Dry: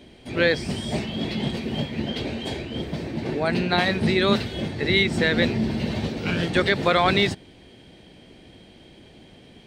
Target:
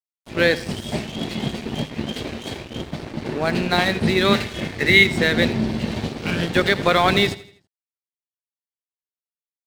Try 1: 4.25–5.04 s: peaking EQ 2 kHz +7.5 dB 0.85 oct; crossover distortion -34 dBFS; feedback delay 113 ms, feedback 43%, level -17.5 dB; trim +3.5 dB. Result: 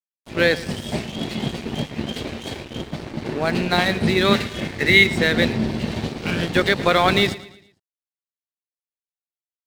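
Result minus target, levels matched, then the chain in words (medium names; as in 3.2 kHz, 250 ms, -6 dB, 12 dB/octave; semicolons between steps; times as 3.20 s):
echo 31 ms late
4.25–5.04 s: peaking EQ 2 kHz +7.5 dB 0.85 oct; crossover distortion -34 dBFS; feedback delay 82 ms, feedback 43%, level -17.5 dB; trim +3.5 dB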